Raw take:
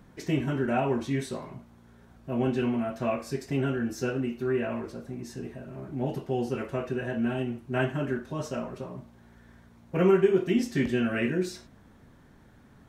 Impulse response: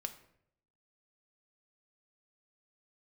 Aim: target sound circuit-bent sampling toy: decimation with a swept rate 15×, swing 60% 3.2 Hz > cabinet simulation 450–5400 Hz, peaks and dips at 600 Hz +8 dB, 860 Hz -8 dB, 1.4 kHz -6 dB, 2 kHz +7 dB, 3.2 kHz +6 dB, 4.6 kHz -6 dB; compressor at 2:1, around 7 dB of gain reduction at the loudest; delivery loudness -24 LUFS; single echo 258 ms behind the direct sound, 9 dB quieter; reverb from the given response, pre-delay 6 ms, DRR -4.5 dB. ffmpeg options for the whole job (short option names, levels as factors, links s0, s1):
-filter_complex "[0:a]acompressor=threshold=0.0355:ratio=2,aecho=1:1:258:0.355,asplit=2[s0][s1];[1:a]atrim=start_sample=2205,adelay=6[s2];[s1][s2]afir=irnorm=-1:irlink=0,volume=2[s3];[s0][s3]amix=inputs=2:normalize=0,acrusher=samples=15:mix=1:aa=0.000001:lfo=1:lforange=9:lforate=3.2,highpass=450,equalizer=f=600:t=q:w=4:g=8,equalizer=f=860:t=q:w=4:g=-8,equalizer=f=1400:t=q:w=4:g=-6,equalizer=f=2000:t=q:w=4:g=7,equalizer=f=3200:t=q:w=4:g=6,equalizer=f=4600:t=q:w=4:g=-6,lowpass=f=5400:w=0.5412,lowpass=f=5400:w=1.3066,volume=1.78"